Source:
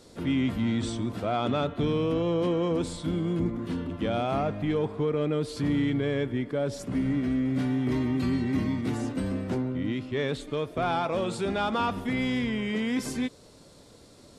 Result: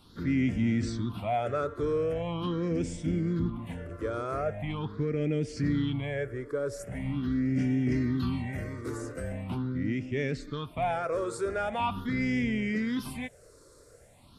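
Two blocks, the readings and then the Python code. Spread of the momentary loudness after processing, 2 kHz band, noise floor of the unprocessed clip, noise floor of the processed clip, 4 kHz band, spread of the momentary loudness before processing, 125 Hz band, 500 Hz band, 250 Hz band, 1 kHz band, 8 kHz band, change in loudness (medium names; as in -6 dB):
9 LU, -1.5 dB, -53 dBFS, -56 dBFS, -6.5 dB, 4 LU, -1.0 dB, -3.0 dB, -3.0 dB, -2.5 dB, -3.0 dB, -2.5 dB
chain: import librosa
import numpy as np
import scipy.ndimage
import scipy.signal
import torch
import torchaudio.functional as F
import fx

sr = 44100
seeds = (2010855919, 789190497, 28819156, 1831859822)

y = fx.phaser_stages(x, sr, stages=6, low_hz=200.0, high_hz=1100.0, hz=0.42, feedback_pct=30)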